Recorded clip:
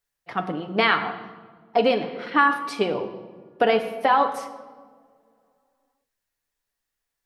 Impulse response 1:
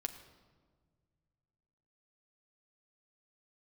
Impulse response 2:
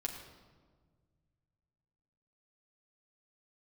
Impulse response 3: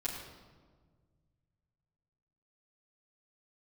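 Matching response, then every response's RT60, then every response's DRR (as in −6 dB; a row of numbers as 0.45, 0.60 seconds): 1; 1.6, 1.6, 1.6 seconds; 5.5, −1.5, −10.0 decibels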